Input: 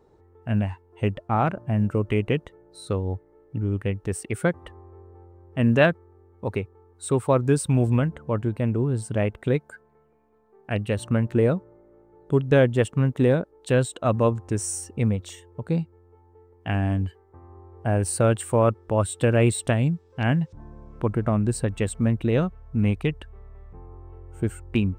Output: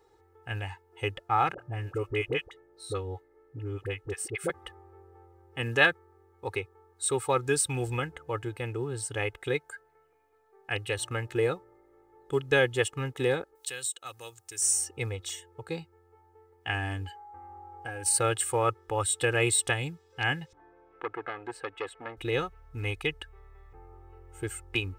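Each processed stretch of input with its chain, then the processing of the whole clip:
1.54–4.5 high shelf 2900 Hz -6 dB + notch 860 Hz, Q 14 + dispersion highs, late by 47 ms, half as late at 720 Hz
13.55–14.62 pre-emphasis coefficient 0.9 + three-band squash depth 40%
17.05–18.17 compressor, threshold -25 dBFS + comb 3.7 ms, depth 45% + whine 830 Hz -45 dBFS
20.53–22.17 three-band isolator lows -22 dB, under 230 Hz, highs -24 dB, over 2900 Hz + core saturation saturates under 850 Hz
whole clip: tilt shelf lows -8 dB, about 850 Hz; comb 2.4 ms, depth 90%; gain -5.5 dB

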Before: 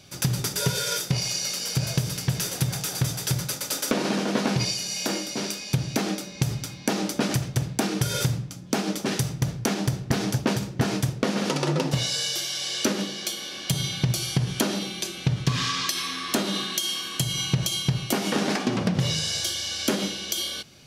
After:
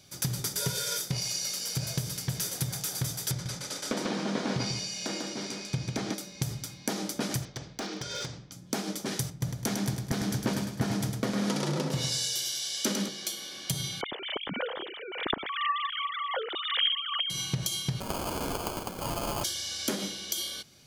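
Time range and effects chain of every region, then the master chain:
3.31–6.14 air absorption 73 m + echo 0.146 s -3.5 dB
7.45–8.52 LPF 5900 Hz 24 dB/oct + bell 120 Hz -10.5 dB 1.6 oct + hard clip -22.5 dBFS
9.3–13.09 bell 200 Hz +3.5 dB 0.37 oct + feedback echo 0.104 s, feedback 47%, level -5 dB + three-band expander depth 40%
14.01–17.3 sine-wave speech + notch 2500 Hz, Q 13 + backwards sustainer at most 56 dB/s
18–19.44 weighting filter ITU-R 468 + compressor 4:1, threshold -22 dBFS + sample-rate reducer 1900 Hz
whole clip: high shelf 5200 Hz +6.5 dB; notch 2700 Hz, Q 11; gain -7.5 dB

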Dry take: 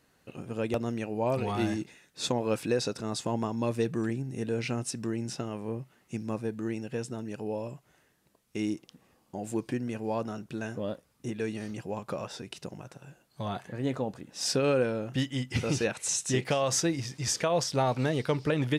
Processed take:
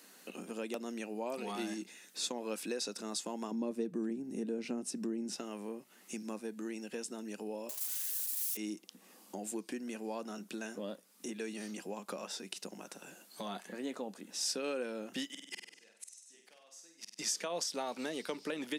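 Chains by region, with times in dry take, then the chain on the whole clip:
3.51–5.33 tilt shelf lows +9.5 dB, about 820 Hz + mismatched tape noise reduction encoder only
7.69–8.57 switching spikes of -29.5 dBFS + HPF 500 Hz 24 dB/oct + comb 4.8 ms, depth 59%
15.25–17.19 low shelf 340 Hz -10.5 dB + flipped gate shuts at -28 dBFS, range -40 dB + flutter echo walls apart 8.3 m, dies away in 0.6 s
whole clip: Chebyshev high-pass 190 Hz, order 5; high shelf 3800 Hz +11 dB; compressor 2:1, threshold -54 dBFS; gain +5.5 dB

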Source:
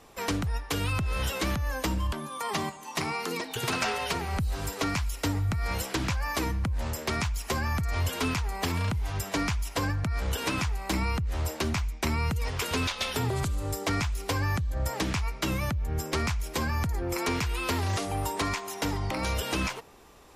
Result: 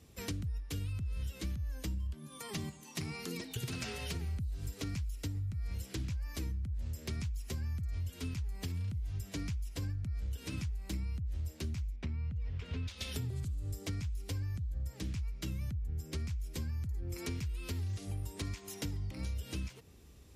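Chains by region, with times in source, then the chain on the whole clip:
11.96–12.88 LPF 2700 Hz + bell 340 Hz -7.5 dB 0.28 oct
whole clip: HPF 52 Hz 24 dB/oct; passive tone stack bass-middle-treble 10-0-1; compressor 10:1, threshold -49 dBFS; gain +14.5 dB

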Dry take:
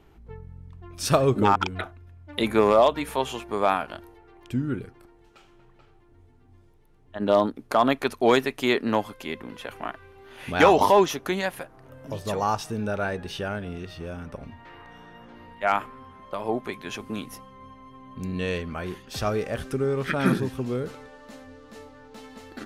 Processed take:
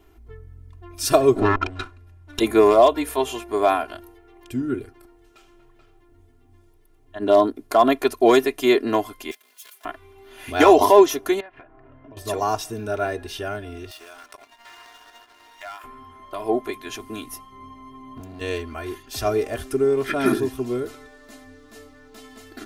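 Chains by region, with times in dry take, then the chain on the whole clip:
1.35–2.4 minimum comb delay 0.74 ms + treble ducked by the level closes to 2500 Hz, closed at -17.5 dBFS
9.31–9.85 minimum comb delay 4.7 ms + HPF 280 Hz + differentiator
11.4–12.17 LPF 2500 Hz 24 dB/oct + compressor 5:1, threshold -40 dBFS
13.91–15.84 HPF 830 Hz + sample leveller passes 2 + compressor 4:1, threshold -38 dBFS
17.52–18.41 bell 240 Hz +5.5 dB 2.9 oct + compressor 16:1, threshold -28 dBFS + hard clip -31 dBFS
whole clip: high shelf 7500 Hz +11 dB; comb 2.9 ms, depth 86%; dynamic EQ 460 Hz, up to +6 dB, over -30 dBFS, Q 0.84; gain -2.5 dB

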